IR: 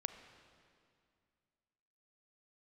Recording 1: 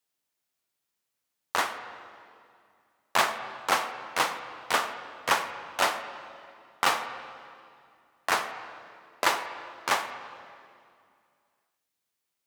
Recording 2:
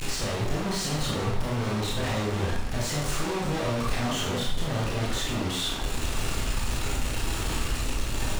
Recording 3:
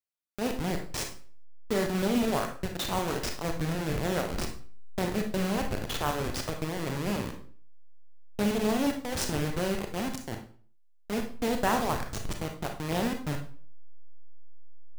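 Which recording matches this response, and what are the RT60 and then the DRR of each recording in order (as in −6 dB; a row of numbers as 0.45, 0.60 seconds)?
1; 2.3, 0.65, 0.45 seconds; 9.0, −5.0, 3.5 decibels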